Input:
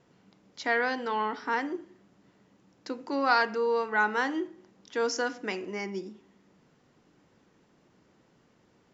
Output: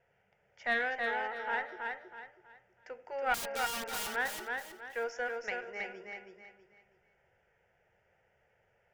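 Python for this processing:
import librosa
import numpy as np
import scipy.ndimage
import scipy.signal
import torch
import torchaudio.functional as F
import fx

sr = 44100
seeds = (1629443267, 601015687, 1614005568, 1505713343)

p1 = scipy.signal.sosfilt(scipy.signal.butter(2, 3400.0, 'lowpass', fs=sr, output='sos'), x)
p2 = fx.peak_eq(p1, sr, hz=200.0, db=-14.5, octaves=1.6)
p3 = np.clip(p2, -10.0 ** (-22.0 / 20.0), 10.0 ** (-22.0 / 20.0))
p4 = p2 + F.gain(torch.from_numpy(p3), -11.0).numpy()
p5 = fx.fixed_phaser(p4, sr, hz=1100.0, stages=6)
p6 = fx.cheby_harmonics(p5, sr, harmonics=(2, 5, 7), levels_db=(-11, -32, -38), full_scale_db=-15.0)
p7 = fx.overflow_wrap(p6, sr, gain_db=30.5, at=(3.34, 4.1))
p8 = fx.echo_feedback(p7, sr, ms=323, feedback_pct=32, wet_db=-4)
y = F.gain(torch.from_numpy(p8), -3.5).numpy()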